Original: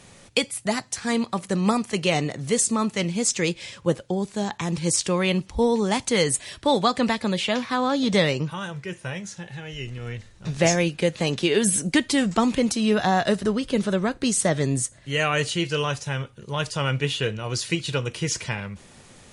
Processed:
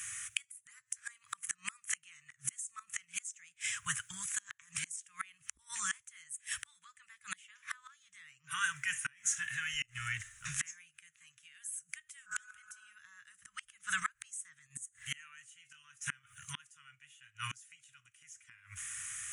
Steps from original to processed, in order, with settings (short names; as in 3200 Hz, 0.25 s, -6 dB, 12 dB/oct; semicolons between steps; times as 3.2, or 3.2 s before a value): spectral repair 12.29–12.9, 530–1700 Hz after; inverse Chebyshev band-stop 230–740 Hz, stop band 50 dB; flipped gate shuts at -25 dBFS, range -32 dB; tilt +4 dB/oct; in parallel at -2 dB: level quantiser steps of 23 dB; on the sum: EQ curve 130 Hz 0 dB, 280 Hz +7 dB, 580 Hz -5 dB, 1100 Hz +5 dB, 1800 Hz +1 dB, 3100 Hz -8 dB, 4400 Hz -24 dB, 6500 Hz -3 dB